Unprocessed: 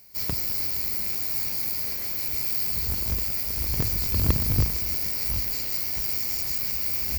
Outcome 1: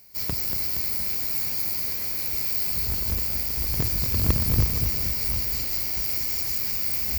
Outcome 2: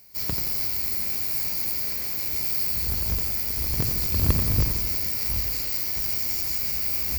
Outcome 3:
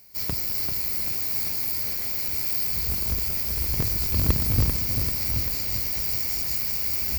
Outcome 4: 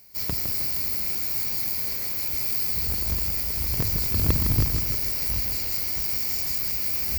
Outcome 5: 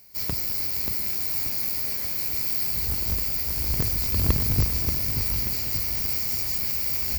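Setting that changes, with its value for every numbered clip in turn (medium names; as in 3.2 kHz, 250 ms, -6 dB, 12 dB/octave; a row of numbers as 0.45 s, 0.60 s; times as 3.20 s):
bit-crushed delay, time: 235 ms, 87 ms, 391 ms, 159 ms, 583 ms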